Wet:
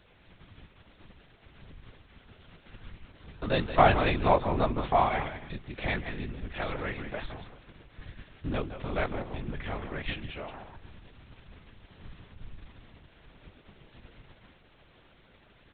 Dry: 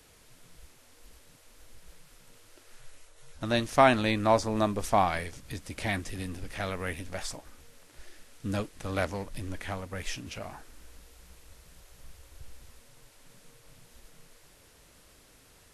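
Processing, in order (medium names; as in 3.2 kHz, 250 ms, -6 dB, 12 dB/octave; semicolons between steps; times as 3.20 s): delay 169 ms -11.5 dB; reverberation, pre-delay 142 ms, DRR 18 dB; LPC vocoder at 8 kHz whisper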